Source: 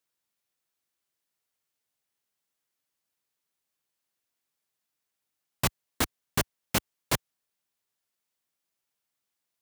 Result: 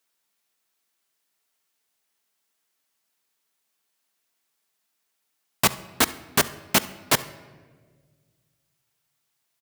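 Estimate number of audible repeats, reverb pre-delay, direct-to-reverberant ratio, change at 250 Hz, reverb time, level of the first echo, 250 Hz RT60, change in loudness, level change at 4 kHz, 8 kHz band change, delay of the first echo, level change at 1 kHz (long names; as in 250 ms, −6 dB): 1, 4 ms, 11.5 dB, +5.0 dB, 1.6 s, −21.5 dB, 2.1 s, +7.5 dB, +8.0 dB, +8.0 dB, 68 ms, +8.0 dB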